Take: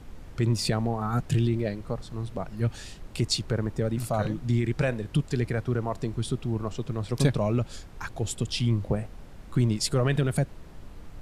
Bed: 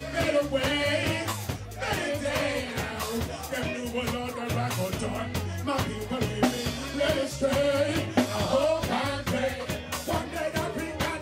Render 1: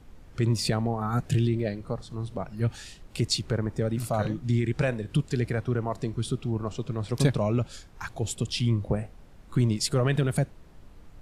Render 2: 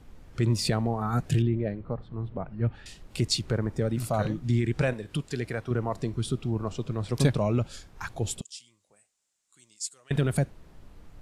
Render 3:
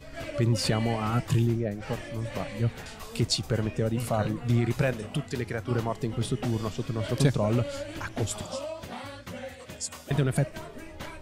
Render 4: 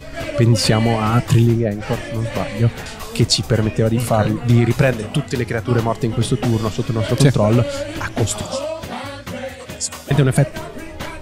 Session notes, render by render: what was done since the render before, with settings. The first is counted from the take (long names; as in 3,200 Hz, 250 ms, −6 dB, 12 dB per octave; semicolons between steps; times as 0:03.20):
noise reduction from a noise print 6 dB
0:01.42–0:02.86: high-frequency loss of the air 490 metres; 0:04.93–0:05.71: low-shelf EQ 290 Hz −8 dB; 0:08.41–0:10.11: resonant band-pass 7,500 Hz, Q 3.3
mix in bed −11.5 dB
level +11 dB; brickwall limiter −2 dBFS, peak gain reduction 1.5 dB